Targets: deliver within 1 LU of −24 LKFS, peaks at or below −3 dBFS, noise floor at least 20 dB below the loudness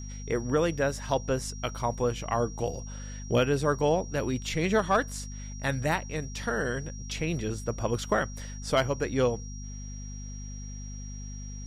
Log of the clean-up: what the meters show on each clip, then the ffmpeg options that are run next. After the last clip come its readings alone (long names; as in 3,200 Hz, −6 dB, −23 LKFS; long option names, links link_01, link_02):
mains hum 50 Hz; hum harmonics up to 250 Hz; level of the hum −37 dBFS; interfering tone 5,700 Hz; level of the tone −46 dBFS; integrated loudness −29.5 LKFS; sample peak −13.5 dBFS; target loudness −24.0 LKFS
→ -af "bandreject=frequency=50:width_type=h:width=6,bandreject=frequency=100:width_type=h:width=6,bandreject=frequency=150:width_type=h:width=6,bandreject=frequency=200:width_type=h:width=6,bandreject=frequency=250:width_type=h:width=6"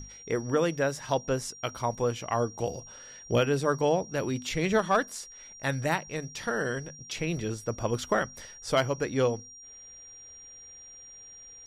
mains hum none found; interfering tone 5,700 Hz; level of the tone −46 dBFS
→ -af "bandreject=frequency=5700:width=30"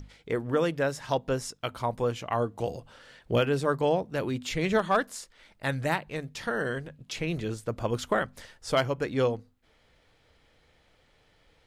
interfering tone none found; integrated loudness −29.5 LKFS; sample peak −13.5 dBFS; target loudness −24.0 LKFS
→ -af "volume=5.5dB"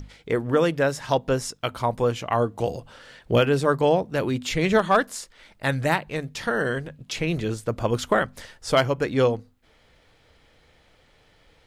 integrated loudness −24.0 LKFS; sample peak −8.0 dBFS; background noise floor −59 dBFS